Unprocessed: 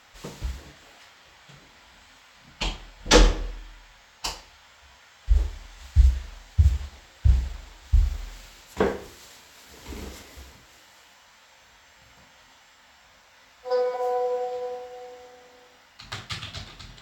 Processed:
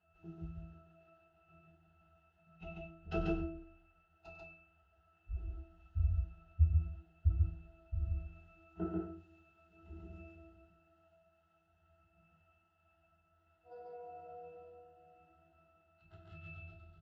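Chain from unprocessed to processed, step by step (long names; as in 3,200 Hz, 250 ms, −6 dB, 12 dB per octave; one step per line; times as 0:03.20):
pitch glide at a constant tempo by −2.5 semitones ending unshifted
resonances in every octave E, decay 0.5 s
loudspeakers that aren't time-aligned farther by 33 metres −12 dB, 48 metres −1 dB
level +3.5 dB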